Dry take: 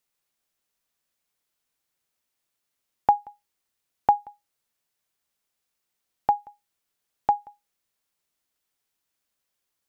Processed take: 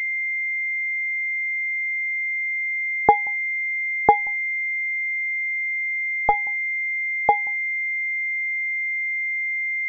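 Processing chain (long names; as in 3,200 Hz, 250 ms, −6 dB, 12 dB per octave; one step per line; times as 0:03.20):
0:04.19–0:06.34: gain on one half-wave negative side −3 dB
switching amplifier with a slow clock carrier 2,100 Hz
level +6.5 dB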